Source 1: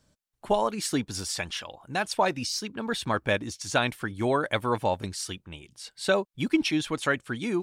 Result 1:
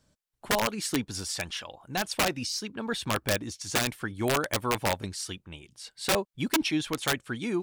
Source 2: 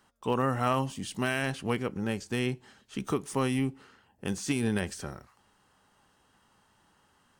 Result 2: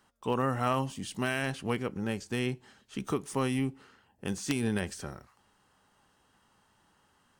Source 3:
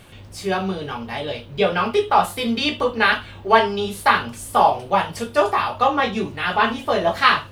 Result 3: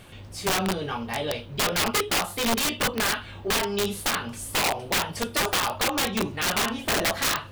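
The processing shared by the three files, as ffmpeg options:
-af "alimiter=limit=-10dB:level=0:latency=1:release=239,aeval=exprs='(mod(6.68*val(0)+1,2)-1)/6.68':c=same,volume=-1.5dB"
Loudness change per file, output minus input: -1.5, -1.5, -5.0 LU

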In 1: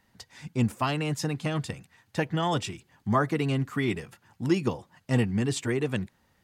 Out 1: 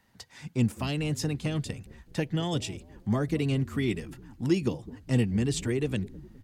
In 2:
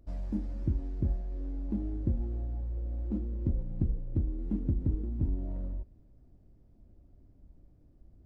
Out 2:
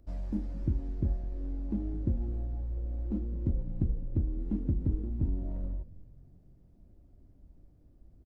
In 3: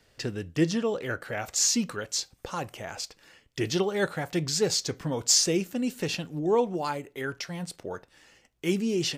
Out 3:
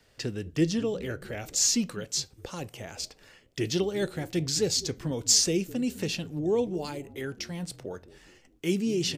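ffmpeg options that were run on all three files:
-filter_complex "[0:a]acrossover=split=590|2100[a][b][c];[a]asplit=6[d][e][f][g][h][i];[e]adelay=206,afreqshift=-45,volume=-16dB[j];[f]adelay=412,afreqshift=-90,volume=-21.5dB[k];[g]adelay=618,afreqshift=-135,volume=-27dB[l];[h]adelay=824,afreqshift=-180,volume=-32.5dB[m];[i]adelay=1030,afreqshift=-225,volume=-38.1dB[n];[d][j][k][l][m][n]amix=inputs=6:normalize=0[o];[b]acompressor=threshold=-49dB:ratio=6[p];[o][p][c]amix=inputs=3:normalize=0"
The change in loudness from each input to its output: -1.0, 0.0, -0.5 LU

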